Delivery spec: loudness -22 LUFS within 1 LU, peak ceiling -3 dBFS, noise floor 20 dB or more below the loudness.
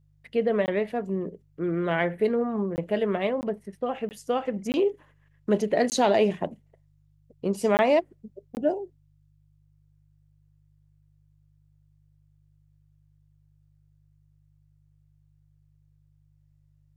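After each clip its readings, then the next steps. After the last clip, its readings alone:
dropouts 8; longest dropout 19 ms; hum 50 Hz; highest harmonic 150 Hz; hum level -59 dBFS; loudness -26.5 LUFS; peak level -10.5 dBFS; loudness target -22.0 LUFS
-> interpolate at 0.66/2.76/3.41/4.09/4.72/5.90/7.77/8.55 s, 19 ms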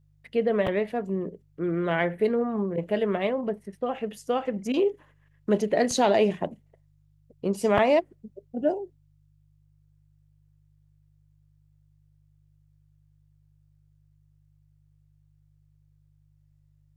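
dropouts 0; hum 50 Hz; highest harmonic 150 Hz; hum level -60 dBFS
-> de-hum 50 Hz, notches 3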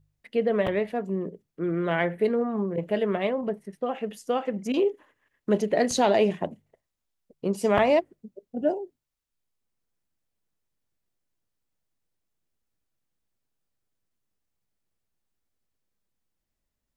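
hum not found; loudness -26.5 LUFS; peak level -8.0 dBFS; loudness target -22.0 LUFS
-> trim +4.5 dB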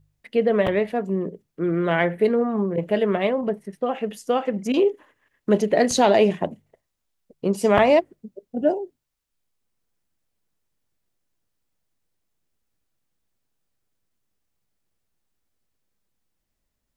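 loudness -22.0 LUFS; peak level -3.5 dBFS; noise floor -78 dBFS

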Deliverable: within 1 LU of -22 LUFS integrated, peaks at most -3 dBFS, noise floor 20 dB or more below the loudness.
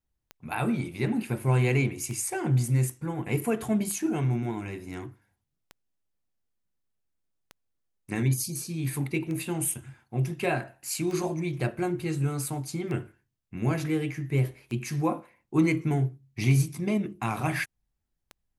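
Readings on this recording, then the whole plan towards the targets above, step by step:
clicks found 11; loudness -29.0 LUFS; peak level -11.0 dBFS; loudness target -22.0 LUFS
-> de-click; trim +7 dB

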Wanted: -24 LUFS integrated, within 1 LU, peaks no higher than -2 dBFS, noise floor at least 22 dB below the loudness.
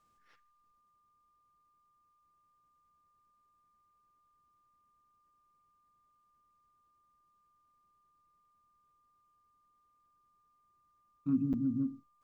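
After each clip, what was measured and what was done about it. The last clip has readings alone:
dropouts 1; longest dropout 7.9 ms; steady tone 1.2 kHz; tone level -70 dBFS; loudness -34.0 LUFS; peak level -21.5 dBFS; loudness target -24.0 LUFS
-> interpolate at 11.53 s, 7.9 ms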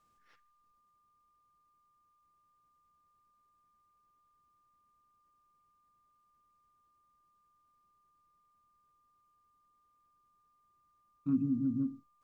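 dropouts 0; steady tone 1.2 kHz; tone level -70 dBFS
-> band-stop 1.2 kHz, Q 30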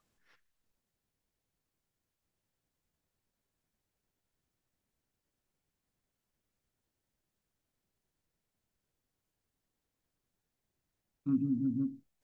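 steady tone not found; loudness -34.0 LUFS; peak level -21.5 dBFS; loudness target -24.0 LUFS
-> trim +10 dB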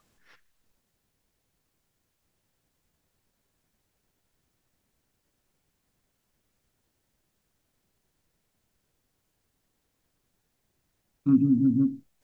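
loudness -24.0 LUFS; peak level -11.5 dBFS; noise floor -77 dBFS

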